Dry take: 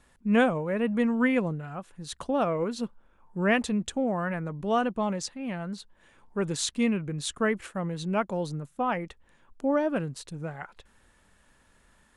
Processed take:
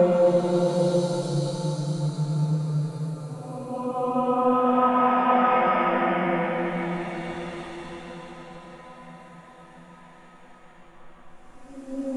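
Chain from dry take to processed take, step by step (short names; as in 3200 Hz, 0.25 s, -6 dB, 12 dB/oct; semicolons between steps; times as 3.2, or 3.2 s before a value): two-slope reverb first 0.54 s, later 1.9 s, from -21 dB, DRR -6.5 dB; AGC; Paulstretch 10×, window 0.25 s, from 8.38; gain -6.5 dB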